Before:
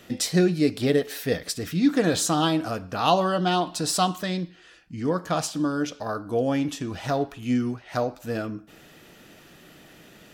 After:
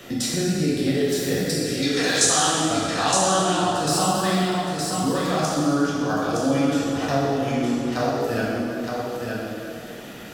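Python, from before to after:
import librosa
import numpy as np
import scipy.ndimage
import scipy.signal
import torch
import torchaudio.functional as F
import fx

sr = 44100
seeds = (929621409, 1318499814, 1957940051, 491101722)

p1 = fx.weighting(x, sr, curve='ITU-R 468', at=(1.63, 2.47))
p2 = fx.level_steps(p1, sr, step_db=14)
p3 = p2 + fx.echo_single(p2, sr, ms=916, db=-6.5, dry=0)
p4 = fx.rev_plate(p3, sr, seeds[0], rt60_s=2.3, hf_ratio=0.65, predelay_ms=0, drr_db=-7.0)
y = fx.band_squash(p4, sr, depth_pct=40)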